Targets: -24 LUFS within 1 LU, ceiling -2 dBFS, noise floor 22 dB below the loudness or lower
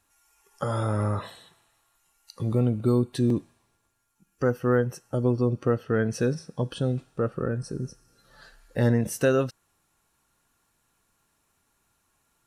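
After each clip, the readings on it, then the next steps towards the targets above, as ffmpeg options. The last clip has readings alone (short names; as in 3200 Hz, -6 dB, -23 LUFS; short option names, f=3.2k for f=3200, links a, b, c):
loudness -26.5 LUFS; peak -10.0 dBFS; loudness target -24.0 LUFS
-> -af "volume=2.5dB"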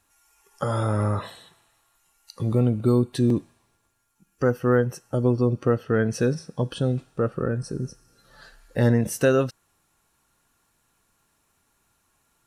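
loudness -24.0 LUFS; peak -7.5 dBFS; noise floor -70 dBFS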